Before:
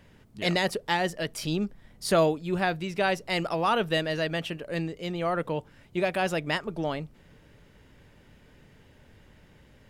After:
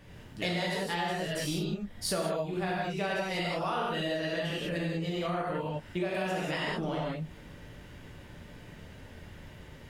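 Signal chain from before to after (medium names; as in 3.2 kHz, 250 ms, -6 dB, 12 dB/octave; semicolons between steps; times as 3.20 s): gated-style reverb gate 220 ms flat, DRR -6.5 dB; compression 6:1, threshold -30 dBFS, peak gain reduction 17 dB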